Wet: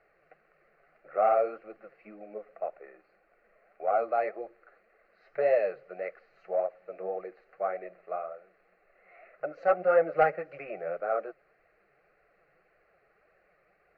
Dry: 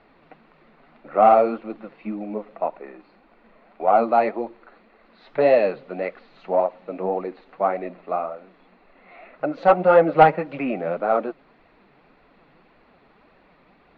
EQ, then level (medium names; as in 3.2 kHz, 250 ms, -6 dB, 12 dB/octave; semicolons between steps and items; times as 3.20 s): bass shelf 230 Hz -8.5 dB; static phaser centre 950 Hz, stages 6; -6.5 dB